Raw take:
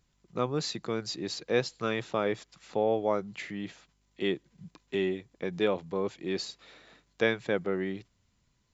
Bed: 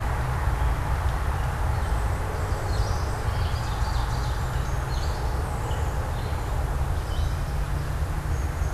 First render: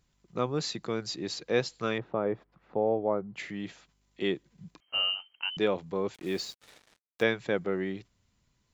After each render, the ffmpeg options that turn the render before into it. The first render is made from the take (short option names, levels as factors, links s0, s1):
-filter_complex "[0:a]asettb=1/sr,asplit=3[s0][s1][s2];[s0]atrim=end=1.984[s3];[s1]atrim=start=1.98:end=3.36,asetpts=PTS-STARTPTS,afade=t=in:d=0.004:c=qsin,afade=t=out:st=1.376:d=0.004:c=qsin,lowpass=1100[s4];[s2]atrim=start=3.356[s5];[s3][s4]acrossfade=d=0.004:c1=hsin:c2=qsin[s6];[s6][s5]acrossfade=d=0.004:c1=qsin:c2=hsin,asettb=1/sr,asplit=3[s7][s8][s9];[s7]atrim=end=4.804[s10];[s8]atrim=start=4.8:end=5.57,asetpts=PTS-STARTPTS,afade=t=in:d=0.004:c=qsin,afade=t=out:st=0.766:d=0.004:c=qsin,lowpass=f=2700:t=q:w=0.5098,lowpass=f=2700:t=q:w=0.6013,lowpass=f=2700:t=q:w=0.9,lowpass=f=2700:t=q:w=2.563,afreqshift=-3200[s11];[s9]atrim=start=5.566[s12];[s10][s11]acrossfade=d=0.004:c1=hsin:c2=qsin[s13];[s13][s12]acrossfade=d=0.004:c1=qsin:c2=hsin,asettb=1/sr,asplit=3[s14][s15][s16];[s14]atrim=end=6.144[s17];[s15]atrim=start=6.14:end=7.23,asetpts=PTS-STARTPTS,afade=t=in:d=0.004:c=qsin,afade=t=out:st=1.086:d=0.004:c=qsin,acrusher=bits=7:mix=0:aa=0.5[s18];[s16]atrim=start=7.226[s19];[s17][s18]acrossfade=d=0.004:c1=hsin:c2=qsin[s20];[s20][s19]acrossfade=d=0.004:c1=qsin:c2=hsin"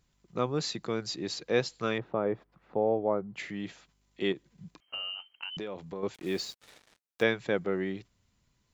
-filter_complex "[0:a]asettb=1/sr,asplit=3[s0][s1][s2];[s0]atrim=end=4.324[s3];[s1]atrim=start=4.32:end=6.03,asetpts=PTS-STARTPTS,afade=t=in:d=0.004:c=qsin,afade=t=out:st=1.706:d=0.004:c=qsin,acompressor=threshold=0.02:ratio=6:attack=3.2:release=140:knee=1:detection=peak[s4];[s2]atrim=start=6.026[s5];[s3][s4]acrossfade=d=0.004:c1=hsin:c2=qsin[s6];[s6][s5]acrossfade=d=0.004:c1=qsin:c2=hsin"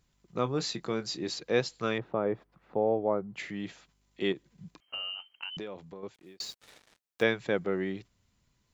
-filter_complex "[0:a]asettb=1/sr,asplit=3[s0][s1][s2];[s0]atrim=end=0.424[s3];[s1]atrim=start=0.42:end=1.3,asetpts=PTS-STARTPTS,afade=t=in:d=0.004:c=qsin,afade=t=out:st=0.876:d=0.004:c=qsin,asplit=2[s4][s5];[s5]adelay=23,volume=0.266[s6];[s4][s6]amix=inputs=2:normalize=0,atrim=end_sample=38808[s7];[s2]atrim=start=1.296[s8];[s3][s7]acrossfade=d=0.004:c1=hsin:c2=qsin[s9];[s9][s8]acrossfade=d=0.004:c1=qsin:c2=hsin,asplit=2[s10][s11];[s10]atrim=end=6.4,asetpts=PTS-STARTPTS,afade=t=out:st=5.47:d=0.93[s12];[s11]atrim=start=6.4,asetpts=PTS-STARTPTS,afade=t=in:d=0.004:c=hsin[s13];[s12][s13]concat=n=2:v=0:a=1"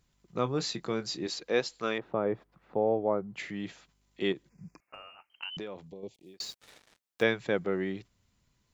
-filter_complex "[0:a]asettb=1/sr,asplit=3[s0][s1][s2];[s0]atrim=end=1.264[s3];[s1]atrim=start=1.26:end=2.06,asetpts=PTS-STARTPTS,afade=t=in:d=0.004:c=qsin,afade=t=out:st=0.796:d=0.004:c=qsin,equalizer=f=110:t=o:w=1.3:g=-11.5[s4];[s2]atrim=start=2.056[s5];[s3][s4]acrossfade=d=0.004:c1=hsin:c2=qsin[s6];[s6][s5]acrossfade=d=0.004:c1=qsin:c2=hsin,asettb=1/sr,asplit=3[s7][s8][s9];[s7]atrim=end=4.494[s10];[s8]atrim=start=4.49:end=5.3,asetpts=PTS-STARTPTS,afade=t=in:d=0.004:c=qsin,afade=t=out:st=0.806:d=0.004:c=qsin,asuperstop=centerf=3500:order=12:qfactor=1.7[s11];[s9]atrim=start=5.296[s12];[s10][s11]acrossfade=d=0.004:c1=hsin:c2=qsin[s13];[s13][s12]acrossfade=d=0.004:c1=qsin:c2=hsin,asettb=1/sr,asplit=3[s14][s15][s16];[s14]atrim=end=5.874[s17];[s15]atrim=start=5.87:end=6.34,asetpts=PTS-STARTPTS,afade=t=in:d=0.004:c=qsin,afade=t=out:st=0.466:d=0.004:c=qsin,asuperstop=centerf=1400:order=4:qfactor=0.69[s18];[s16]atrim=start=6.336[s19];[s17][s18]acrossfade=d=0.004:c1=hsin:c2=qsin[s20];[s20][s19]acrossfade=d=0.004:c1=qsin:c2=hsin"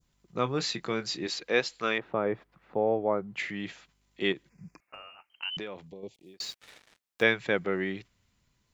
-af "adynamicequalizer=threshold=0.00355:dfrequency=2200:dqfactor=0.79:tfrequency=2200:tqfactor=0.79:attack=5:release=100:ratio=0.375:range=3.5:mode=boostabove:tftype=bell"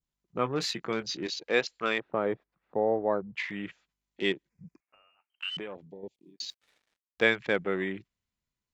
-af "afwtdn=0.00794,equalizer=f=110:w=1.3:g=-3.5"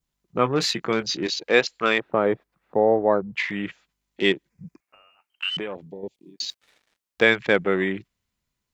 -af "volume=2.51,alimiter=limit=0.708:level=0:latency=1"